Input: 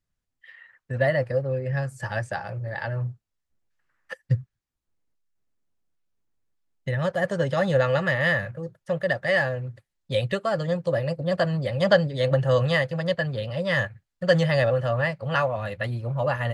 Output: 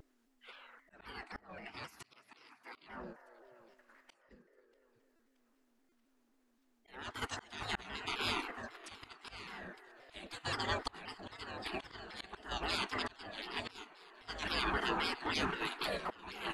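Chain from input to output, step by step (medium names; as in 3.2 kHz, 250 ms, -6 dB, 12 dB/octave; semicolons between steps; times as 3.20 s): hum 50 Hz, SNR 20 dB; 1.68–2.77 s: steep high-pass 290 Hz 72 dB/octave; on a send at -19 dB: reverberation RT60 1.6 s, pre-delay 3 ms; on the sum: spectral gate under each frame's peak -25 dB weak; treble shelf 2.3 kHz -7 dB; slow attack 728 ms; thinning echo 632 ms, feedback 56%, high-pass 550 Hz, level -19 dB; in parallel at 0 dB: level held to a coarse grid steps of 13 dB; on the sum: buffer glitch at 5.16/5.89 s, samples 128, times 10; vibrato with a chosen wave saw down 3.8 Hz, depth 160 cents; trim +8 dB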